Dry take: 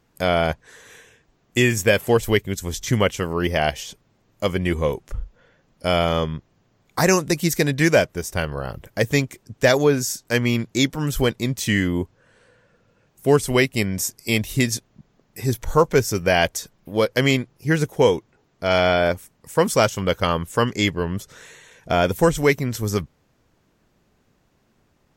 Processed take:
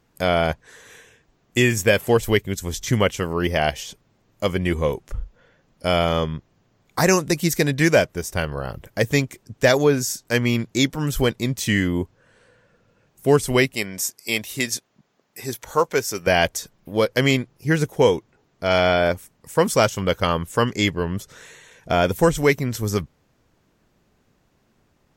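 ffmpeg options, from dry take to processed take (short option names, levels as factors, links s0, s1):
-filter_complex "[0:a]asettb=1/sr,asplit=3[s0][s1][s2];[s0]atrim=end=13.744[s3];[s1]atrim=start=13.74:end=16.27,asetpts=PTS-STARTPTS,afade=t=in:d=0.004:c=qsin,afade=t=out:st=2.526:d=0.004:c=qsin,highpass=f=520:p=1[s4];[s2]atrim=start=16.266[s5];[s3][s4]acrossfade=d=0.004:c1=hsin:c2=qsin[s6];[s6][s5]acrossfade=d=0.004:c1=qsin:c2=hsin"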